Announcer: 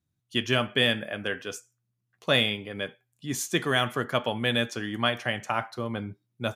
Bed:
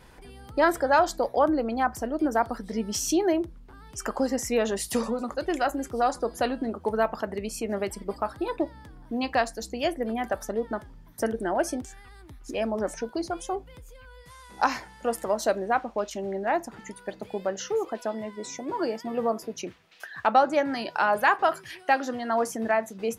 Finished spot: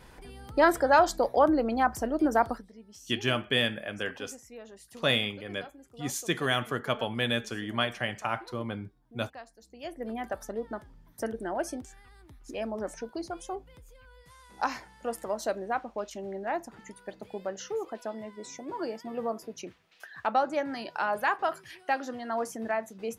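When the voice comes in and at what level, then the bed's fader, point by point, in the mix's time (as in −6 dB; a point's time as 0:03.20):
2.75 s, −3.0 dB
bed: 0:02.51 0 dB
0:02.73 −21.5 dB
0:09.62 −21.5 dB
0:10.07 −6 dB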